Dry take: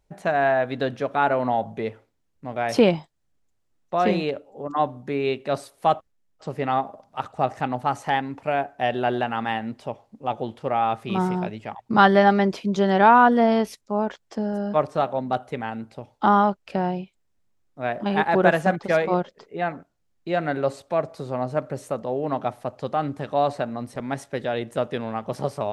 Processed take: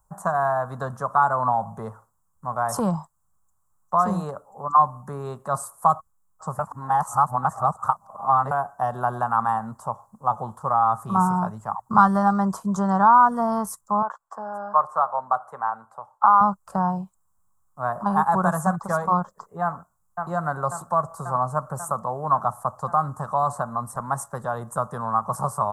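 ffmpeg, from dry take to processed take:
ffmpeg -i in.wav -filter_complex "[0:a]asettb=1/sr,asplit=3[link_01][link_02][link_03];[link_01]atrim=end=14.024[link_04];[link_02]atrim=start=14.02:end=16.41,asetpts=PTS-STARTPTS,afade=type=in:duration=0.004:curve=qsin,afade=type=out:start_time=2.386:duration=0.004:curve=qsin,acrossover=split=440 3000:gain=0.112 1 0.224[link_05][link_06][link_07];[link_05][link_06][link_07]amix=inputs=3:normalize=0[link_08];[link_03]atrim=start=16.406[link_09];[link_04][link_08]acrossfade=duration=0.004:curve1=hsin:curve2=qsin[link_10];[link_10][link_09]acrossfade=duration=0.004:curve1=qsin:curve2=hsin,asplit=2[link_11][link_12];[link_12]afade=type=in:start_time=19.63:duration=0.01,afade=type=out:start_time=20.29:duration=0.01,aecho=0:1:540|1080|1620|2160|2700|3240|3780|4320|4860|5400|5940|6480:0.446684|0.335013|0.25126|0.188445|0.141333|0.106|0.0795001|0.0596251|0.0447188|0.0335391|0.0251543|0.0188657[link_13];[link_11][link_13]amix=inputs=2:normalize=0,asplit=3[link_14][link_15][link_16];[link_14]atrim=end=6.592[link_17];[link_15]atrim=start=6.588:end=8.512,asetpts=PTS-STARTPTS,areverse[link_18];[link_16]atrim=start=8.508[link_19];[link_17][link_18]acrossfade=duration=0.004:curve1=hsin:curve2=hsin[link_20];[link_20][link_19]acrossfade=duration=0.004:curve1=hsin:curve2=hsin,acrossover=split=280|3000[link_21][link_22][link_23];[link_22]acompressor=threshold=-24dB:ratio=3[link_24];[link_21][link_24][link_23]amix=inputs=3:normalize=0,firequalizer=gain_entry='entry(190,0);entry(280,-16);entry(1100,15);entry(2300,-30);entry(7500,10)':delay=0.05:min_phase=1,volume=2dB" out.wav

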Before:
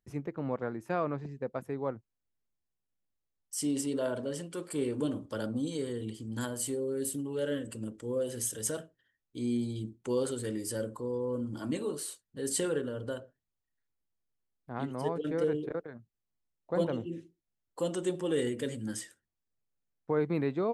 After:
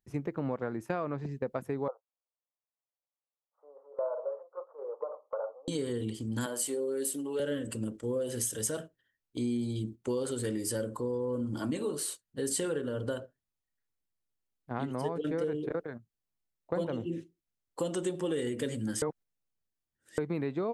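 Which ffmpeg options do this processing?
ffmpeg -i in.wav -filter_complex "[0:a]asettb=1/sr,asplit=3[link_01][link_02][link_03];[link_01]atrim=end=1.884[link_04];[link_02]atrim=start=1.88:end=5.68,asetpts=PTS-STARTPTS,afade=type=in:duration=0.004:curve=qsin,afade=type=out:start_time=3.796:duration=0.004:curve=qsin,asuperpass=centerf=780:order=12:qfactor=1[link_05];[link_03]atrim=start=5.676[link_06];[link_04][link_05]acrossfade=duration=0.004:curve1=hsin:curve2=qsin[link_07];[link_07][link_06]acrossfade=duration=0.004:curve1=qsin:curve2=hsin,asettb=1/sr,asplit=3[link_08][link_09][link_10];[link_08]atrim=end=6.464[link_11];[link_09]atrim=start=6.46:end=7.4,asetpts=PTS-STARTPTS,afade=type=in:duration=0.004:curve=qsin,afade=type=out:start_time=0.936:duration=0.004:curve=qsin,highpass=340[link_12];[link_10]atrim=start=7.396[link_13];[link_11][link_12]acrossfade=duration=0.004:curve1=hsin:curve2=qsin[link_14];[link_14][link_13]acrossfade=duration=0.004:curve1=qsin:curve2=hsin,asplit=3[link_15][link_16][link_17];[link_15]atrim=end=19.022[link_18];[link_16]atrim=start=19.018:end=20.182,asetpts=PTS-STARTPTS,areverse[link_19];[link_17]atrim=start=20.178[link_20];[link_18][link_19]acrossfade=duration=0.004:curve1=hsin:curve2=hsin[link_21];[link_21][link_20]acrossfade=duration=0.004:curve1=hsin:curve2=hsin,agate=range=-7dB:threshold=-45dB:ratio=16:detection=peak,acompressor=threshold=-34dB:ratio=6,volume=5dB" out.wav

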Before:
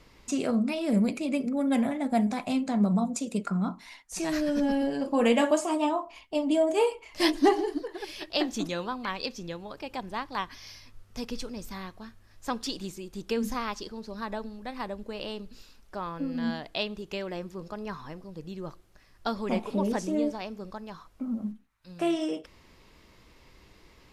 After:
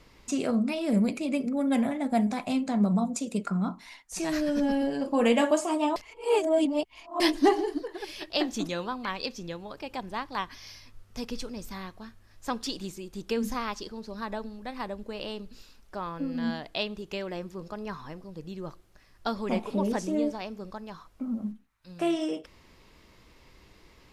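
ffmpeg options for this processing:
ffmpeg -i in.wav -filter_complex "[0:a]asplit=3[link_01][link_02][link_03];[link_01]atrim=end=5.962[link_04];[link_02]atrim=start=5.958:end=7.202,asetpts=PTS-STARTPTS,areverse[link_05];[link_03]atrim=start=7.198[link_06];[link_04][link_05]acrossfade=duration=0.004:curve1=hsin:curve2=hsin[link_07];[link_07][link_06]acrossfade=duration=0.004:curve1=hsin:curve2=hsin" out.wav

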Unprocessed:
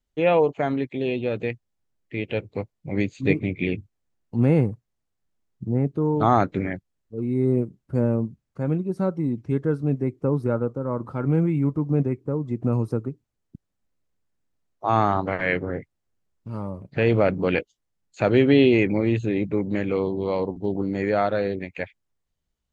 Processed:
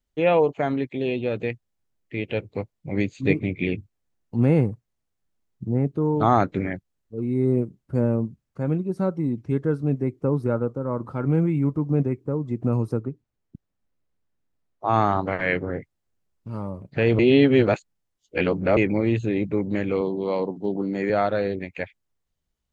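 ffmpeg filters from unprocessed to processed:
ffmpeg -i in.wav -filter_complex "[0:a]asettb=1/sr,asplit=3[link_01][link_02][link_03];[link_01]atrim=end=12.994[link_04];[link_02]atrim=start=12.99:end=14.94,asetpts=PTS-STARTPTS,afade=type=in:duration=0.004:curve=qsin,afade=type=out:start_time=1.946:duration=0.004:curve=qsin,highshelf=frequency=5500:gain=-10[link_05];[link_03]atrim=start=14.936[link_06];[link_04][link_05]acrossfade=duration=0.004:curve1=hsin:curve2=qsin[link_07];[link_07][link_06]acrossfade=duration=0.004:curve1=qsin:curve2=hsin,asettb=1/sr,asplit=3[link_08][link_09][link_10];[link_08]atrim=end=20.014[link_11];[link_09]atrim=start=20.01:end=21.1,asetpts=PTS-STARTPTS,afade=type=in:duration=0.004:curve=qsin,afade=type=out:start_time=1.086:duration=0.004:curve=qsin,highpass=frequency=140:width=0.5412,highpass=frequency=140:width=1.3066[link_12];[link_10]atrim=start=21.096[link_13];[link_11][link_12]acrossfade=duration=0.004:curve1=hsin:curve2=qsin[link_14];[link_14][link_13]acrossfade=duration=0.004:curve1=qsin:curve2=hsin,asplit=3[link_15][link_16][link_17];[link_15]atrim=end=17.192[link_18];[link_16]atrim=start=17.188:end=18.772,asetpts=PTS-STARTPTS,areverse[link_19];[link_17]atrim=start=18.768[link_20];[link_18][link_19]acrossfade=duration=0.004:curve1=hsin:curve2=hsin[link_21];[link_21][link_20]acrossfade=duration=0.004:curve1=hsin:curve2=hsin" out.wav

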